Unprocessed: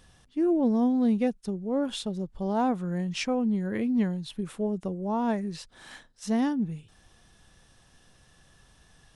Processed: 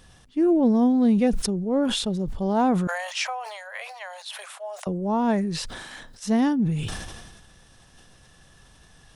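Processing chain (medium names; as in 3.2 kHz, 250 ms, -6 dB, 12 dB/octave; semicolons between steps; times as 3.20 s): 2.87–4.87 s: steep high-pass 600 Hz 72 dB/octave; decay stretcher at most 38 dB/s; trim +4.5 dB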